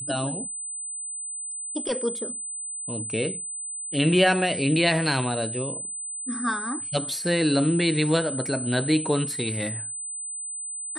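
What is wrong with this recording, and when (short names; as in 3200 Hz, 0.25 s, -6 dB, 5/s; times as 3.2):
tone 8100 Hz -31 dBFS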